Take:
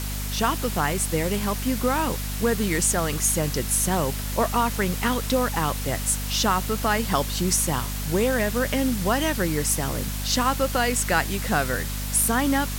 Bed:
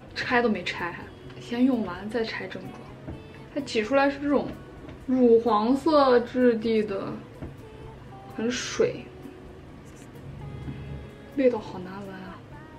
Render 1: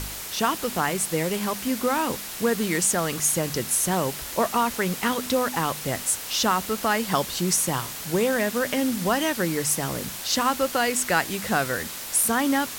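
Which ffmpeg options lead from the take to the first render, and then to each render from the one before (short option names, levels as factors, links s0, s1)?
-af "bandreject=f=50:t=h:w=4,bandreject=f=100:t=h:w=4,bandreject=f=150:t=h:w=4,bandreject=f=200:t=h:w=4,bandreject=f=250:t=h:w=4"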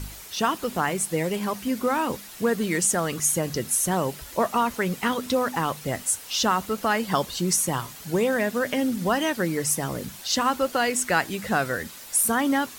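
-af "afftdn=nr=9:nf=-35"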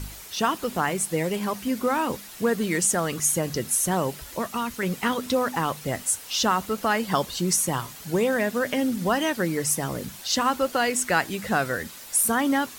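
-filter_complex "[0:a]asettb=1/sr,asplit=3[s0][s1][s2];[s0]atrim=end=4.384[s3];[s1]atrim=start=4.38:end=4.83,asetpts=PTS-STARTPTS,afade=t=in:d=0.004:c=qsin,afade=t=out:st=0.446:d=0.004:c=qsin,equalizer=f=690:t=o:w=1.8:g=-9.5[s4];[s2]atrim=start=4.826[s5];[s3][s4]acrossfade=d=0.004:c1=hsin:c2=qsin[s6];[s6][s5]acrossfade=d=0.004:c1=qsin:c2=hsin"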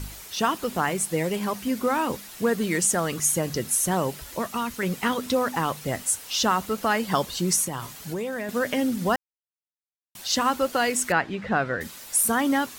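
-filter_complex "[0:a]asettb=1/sr,asplit=3[s0][s1][s2];[s0]atrim=end=7.644[s3];[s1]atrim=start=7.64:end=8.49,asetpts=PTS-STARTPTS,afade=t=in:d=0.004:c=qsin,afade=t=out:st=0.846:d=0.004:c=qsin,acompressor=threshold=0.0447:ratio=4:attack=3.2:release=140:knee=1:detection=peak[s4];[s2]atrim=start=8.486[s5];[s3][s4]acrossfade=d=0.004:c1=hsin:c2=qsin[s6];[s6][s5]acrossfade=d=0.004:c1=qsin:c2=hsin,asettb=1/sr,asplit=3[s7][s8][s9];[s7]atrim=end=11.124[s10];[s8]atrim=start=11.12:end=11.81,asetpts=PTS-STARTPTS,afade=t=in:d=0.004:c=qsin,afade=t=out:st=0.686:d=0.004:c=qsin,lowpass=2700[s11];[s9]atrim=start=11.806[s12];[s10][s11]acrossfade=d=0.004:c1=hsin:c2=qsin[s13];[s13][s12]acrossfade=d=0.004:c1=qsin:c2=hsin,asplit=3[s14][s15][s16];[s14]atrim=end=9.16,asetpts=PTS-STARTPTS,afade=t=out:st=9.156:d=0.004:c=hsin[s17];[s15]atrim=start=9.16:end=10.15,asetpts=PTS-STARTPTS,volume=0[s18];[s16]atrim=start=10.15,asetpts=PTS-STARTPTS,afade=t=in:d=0.004:c=hsin[s19];[s17][s18][s19]concat=n=3:v=0:a=1"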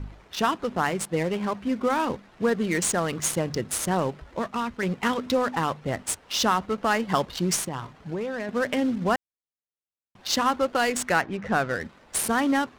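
-af "adynamicsmooth=sensitivity=6.5:basefreq=1000"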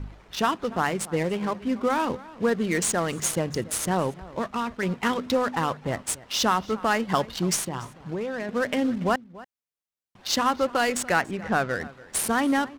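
-filter_complex "[0:a]asplit=2[s0][s1];[s1]adelay=285.7,volume=0.112,highshelf=f=4000:g=-6.43[s2];[s0][s2]amix=inputs=2:normalize=0"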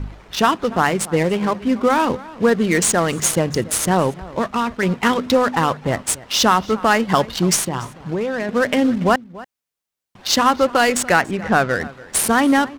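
-af "volume=2.51,alimiter=limit=0.708:level=0:latency=1"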